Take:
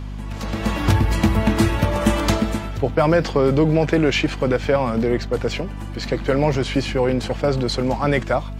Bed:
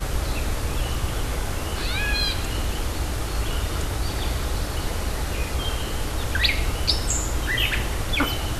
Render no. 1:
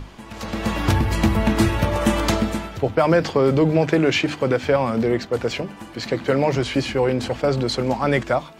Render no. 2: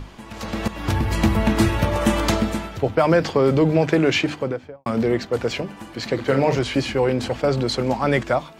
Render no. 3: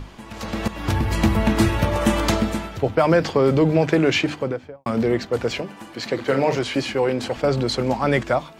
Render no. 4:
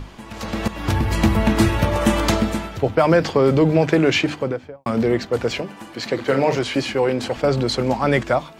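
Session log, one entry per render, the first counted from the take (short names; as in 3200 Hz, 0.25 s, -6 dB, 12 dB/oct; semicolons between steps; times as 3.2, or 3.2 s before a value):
notches 50/100/150/200/250/300 Hz
0.68–1.29 fade in equal-power, from -13 dB; 4.18–4.86 studio fade out; 6.14–6.59 doubler 44 ms -7.5 dB
5.59–7.37 HPF 190 Hz 6 dB/oct
gain +1.5 dB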